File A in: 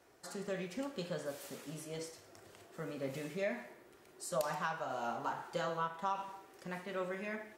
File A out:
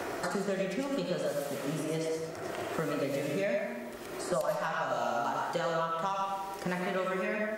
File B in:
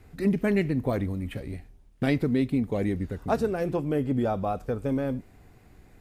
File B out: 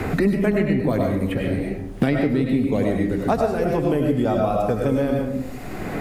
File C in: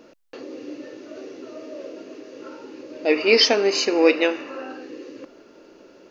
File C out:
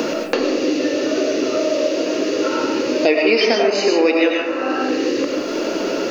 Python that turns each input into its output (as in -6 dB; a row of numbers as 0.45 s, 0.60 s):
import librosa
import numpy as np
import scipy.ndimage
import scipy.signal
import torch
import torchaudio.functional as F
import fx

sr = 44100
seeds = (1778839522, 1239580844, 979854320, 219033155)

y = fx.rev_freeverb(x, sr, rt60_s=0.61, hf_ratio=0.45, predelay_ms=60, drr_db=0.5)
y = fx.band_squash(y, sr, depth_pct=100)
y = y * 10.0 ** (3.5 / 20.0)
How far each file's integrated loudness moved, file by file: +7.5 LU, +6.0 LU, +0.5 LU